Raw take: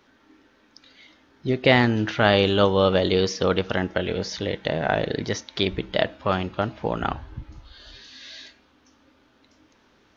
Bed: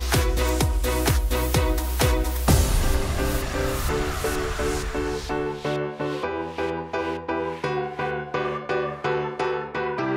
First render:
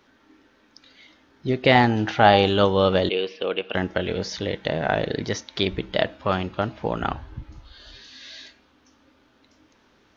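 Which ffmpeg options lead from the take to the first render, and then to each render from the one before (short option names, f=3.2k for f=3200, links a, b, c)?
-filter_complex "[0:a]asettb=1/sr,asplit=3[a][b][c];[a]atrim=end=1.754[d];[b]atrim=start=1.75:end=2.49,asetpts=PTS-STARTPTS,afade=t=in:d=0.004:c=qsin,afade=t=out:st=0.736:d=0.004:c=qsin,equalizer=f=790:t=o:w=0.29:g=12.5[e];[c]atrim=start=2.486[f];[d][e]acrossfade=d=0.004:c1=hsin:c2=qsin[g];[g][f]acrossfade=d=0.004:c1=qsin:c2=hsin,asettb=1/sr,asplit=3[h][i][j];[h]atrim=end=3.094[k];[i]atrim=start=3.09:end=3.75,asetpts=PTS-STARTPTS,afade=t=in:d=0.004:c=qsin,afade=t=out:st=0.656:d=0.004:c=qsin,highpass=420,equalizer=f=600:t=q:w=4:g=-3,equalizer=f=910:t=q:w=4:g=-9,equalizer=f=1.3k:t=q:w=4:g=-8,equalizer=f=1.9k:t=q:w=4:g=-8,equalizer=f=2.7k:t=q:w=4:g=8,lowpass=f=3.1k:w=0.5412,lowpass=f=3.1k:w=1.3066[l];[j]atrim=start=3.746[m];[k][l]acrossfade=d=0.004:c1=hsin:c2=qsin[n];[n][m]acrossfade=d=0.004:c1=qsin:c2=hsin"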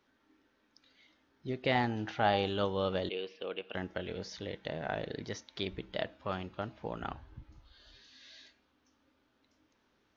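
-af "volume=-13.5dB"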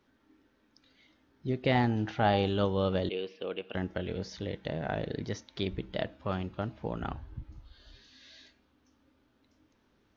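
-af "lowshelf=f=350:g=8.5"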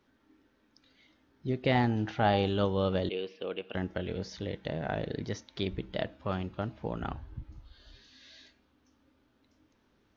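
-af anull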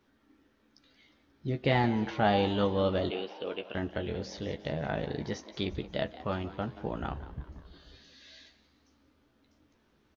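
-filter_complex "[0:a]asplit=2[a][b];[b]adelay=14,volume=-6.5dB[c];[a][c]amix=inputs=2:normalize=0,asplit=6[d][e][f][g][h][i];[e]adelay=178,afreqshift=110,volume=-16dB[j];[f]adelay=356,afreqshift=220,volume=-21.8dB[k];[g]adelay=534,afreqshift=330,volume=-27.7dB[l];[h]adelay=712,afreqshift=440,volume=-33.5dB[m];[i]adelay=890,afreqshift=550,volume=-39.4dB[n];[d][j][k][l][m][n]amix=inputs=6:normalize=0"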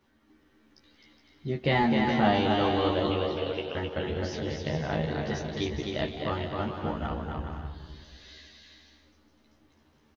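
-filter_complex "[0:a]asplit=2[a][b];[b]adelay=13,volume=-2dB[c];[a][c]amix=inputs=2:normalize=0,aecho=1:1:260|416|509.6|565.8|599.5:0.631|0.398|0.251|0.158|0.1"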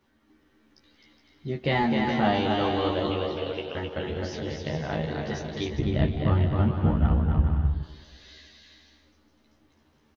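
-filter_complex "[0:a]asettb=1/sr,asplit=3[a][b][c];[a]atrim=end=5.794[d];[b]atrim=start=5.79:end=7.83,asetpts=PTS-STARTPTS,afade=t=in:d=0.004:c=qsin,afade=t=out:st=2.036:d=0.004:c=qsin,bass=f=250:g=15,treble=f=4k:g=-12[e];[c]atrim=start=7.826[f];[d][e]acrossfade=d=0.004:c1=hsin:c2=qsin[g];[g][f]acrossfade=d=0.004:c1=qsin:c2=hsin"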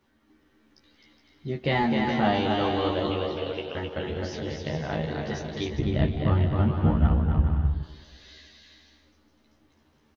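-filter_complex "[0:a]asettb=1/sr,asplit=3[a][b][c];[a]atrim=end=6.684[d];[b]atrim=start=6.68:end=7.08,asetpts=PTS-STARTPTS,afade=t=in:d=0.004:c=qsin,afade=t=out:st=0.396:d=0.004:c=qsin,asplit=2[e][f];[f]adelay=13,volume=-11.5dB[g];[e][g]amix=inputs=2:normalize=0,atrim=end_sample=17640[h];[c]atrim=start=7.076[i];[d][h]acrossfade=d=0.004:c1=hsin:c2=qsin[j];[j][i]acrossfade=d=0.004:c1=qsin:c2=hsin"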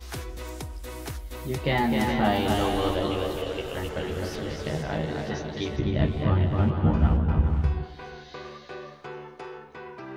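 -filter_complex "[1:a]volume=-14.5dB[a];[0:a][a]amix=inputs=2:normalize=0"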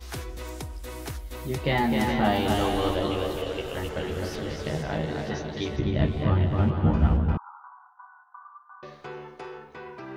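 -filter_complex "[0:a]asettb=1/sr,asplit=3[a][b][c];[a]atrim=end=7.374[d];[b]atrim=start=7.37:end=8.83,asetpts=PTS-STARTPTS,afade=t=in:d=0.004:c=qsin,afade=t=out:st=1.456:d=0.004:c=qsin,asuperpass=centerf=1100:order=12:qfactor=1.8[e];[c]atrim=start=8.826[f];[d][e]acrossfade=d=0.004:c1=hsin:c2=qsin[g];[g][f]acrossfade=d=0.004:c1=qsin:c2=hsin"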